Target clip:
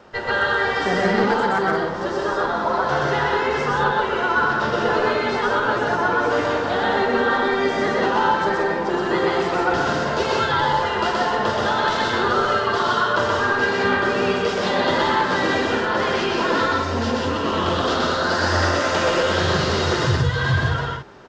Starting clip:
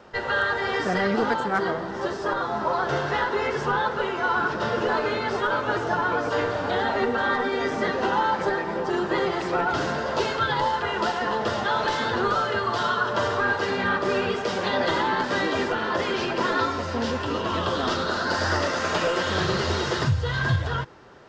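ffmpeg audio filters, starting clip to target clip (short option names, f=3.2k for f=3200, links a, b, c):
-af "aecho=1:1:125.4|180.8:0.891|0.562,volume=1.5dB"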